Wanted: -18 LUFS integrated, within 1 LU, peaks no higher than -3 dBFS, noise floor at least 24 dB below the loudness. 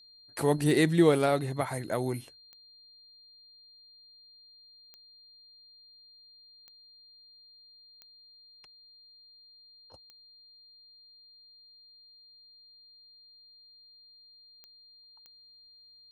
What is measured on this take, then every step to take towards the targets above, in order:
clicks 8; steady tone 4200 Hz; tone level -54 dBFS; loudness -27.0 LUFS; peak -10.5 dBFS; loudness target -18.0 LUFS
-> de-click; notch 4200 Hz, Q 30; gain +9 dB; limiter -3 dBFS

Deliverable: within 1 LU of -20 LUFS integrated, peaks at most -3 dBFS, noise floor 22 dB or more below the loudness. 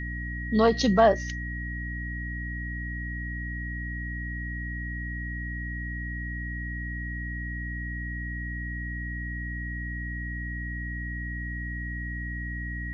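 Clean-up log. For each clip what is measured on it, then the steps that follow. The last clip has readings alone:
hum 60 Hz; harmonics up to 300 Hz; hum level -32 dBFS; steady tone 1900 Hz; tone level -36 dBFS; loudness -31.0 LUFS; peak -7.0 dBFS; loudness target -20.0 LUFS
-> notches 60/120/180/240/300 Hz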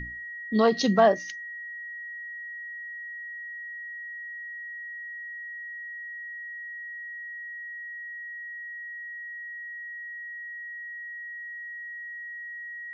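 hum none; steady tone 1900 Hz; tone level -36 dBFS
-> notch 1900 Hz, Q 30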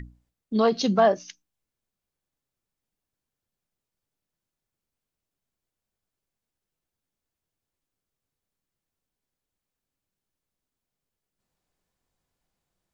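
steady tone none; loudness -23.0 LUFS; peak -8.0 dBFS; loudness target -20.0 LUFS
-> gain +3 dB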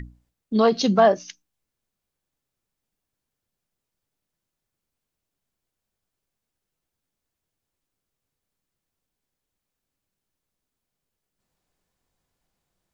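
loudness -20.0 LUFS; peak -5.0 dBFS; noise floor -85 dBFS

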